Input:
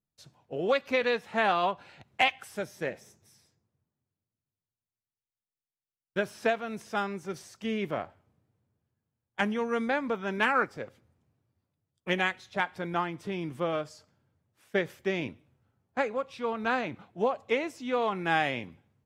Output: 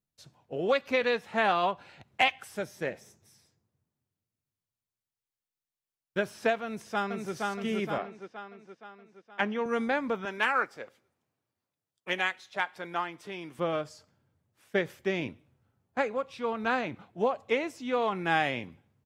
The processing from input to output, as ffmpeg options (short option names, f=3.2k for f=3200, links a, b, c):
-filter_complex "[0:a]asplit=2[a][b];[b]afade=t=in:st=6.63:d=0.01,afade=t=out:st=7.33:d=0.01,aecho=0:1:470|940|1410|1880|2350|2820|3290|3760:0.794328|0.436881|0.240284|0.132156|0.072686|0.0399773|0.0219875|0.0120931[c];[a][c]amix=inputs=2:normalize=0,asettb=1/sr,asplit=3[d][e][f];[d]atrim=end=7.984[g];[e]atrim=start=7.98:end=9.66,asetpts=PTS-STARTPTS,afade=t=in:d=0.004:c=qsin,afade=t=out:st=1.676:d=0.004:c=qsin,highpass=220,lowpass=4.2k[h];[f]atrim=start=9.656[i];[g][h]acrossfade=d=0.004:c1=hsin:c2=qsin[j];[j][i]acrossfade=d=0.004:c1=qsin:c2=hsin,asettb=1/sr,asplit=3[k][l][m];[k]atrim=end=10.254[n];[l]atrim=start=10.25:end=13.59,asetpts=PTS-STARTPTS,afade=t=in:d=0.004:c=qsin,afade=t=out:st=3.336:d=0.004:c=qsin,highpass=f=630:p=1[o];[m]atrim=start=13.586[p];[n][o]acrossfade=d=0.004:c1=hsin:c2=qsin[q];[q][p]acrossfade=d=0.004:c1=qsin:c2=hsin"